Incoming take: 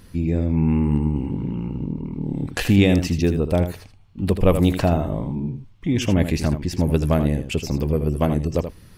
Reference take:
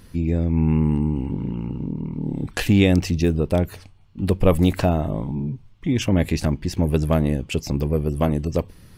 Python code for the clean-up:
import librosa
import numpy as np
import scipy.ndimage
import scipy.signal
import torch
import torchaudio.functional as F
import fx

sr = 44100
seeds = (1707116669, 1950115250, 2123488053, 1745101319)

y = fx.fix_echo_inverse(x, sr, delay_ms=80, level_db=-9.5)